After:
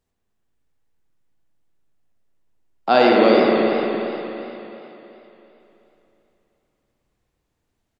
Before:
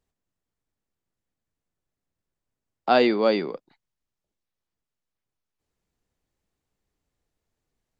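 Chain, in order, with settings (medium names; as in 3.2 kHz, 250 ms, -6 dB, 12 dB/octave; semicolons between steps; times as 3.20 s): speakerphone echo 100 ms, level -19 dB; spring tank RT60 3.3 s, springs 54 ms, chirp 55 ms, DRR -1 dB; modulated delay 113 ms, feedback 71%, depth 128 cents, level -8 dB; trim +2.5 dB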